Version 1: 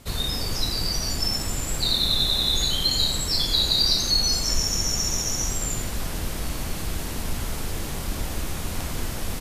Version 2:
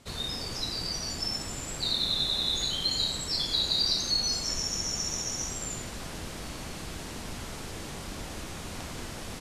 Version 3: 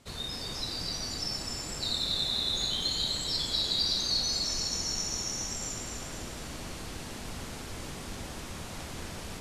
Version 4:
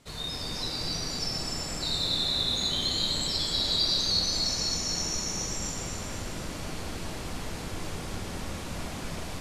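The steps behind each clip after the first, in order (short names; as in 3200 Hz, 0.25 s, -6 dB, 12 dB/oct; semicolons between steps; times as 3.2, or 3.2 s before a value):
LPF 8700 Hz 12 dB/oct; low shelf 69 Hz -12 dB; gain -5.5 dB
split-band echo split 1300 Hz, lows 0.405 s, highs 0.251 s, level -5 dB; gain -3 dB
reverb RT60 3.5 s, pre-delay 6 ms, DRR -1 dB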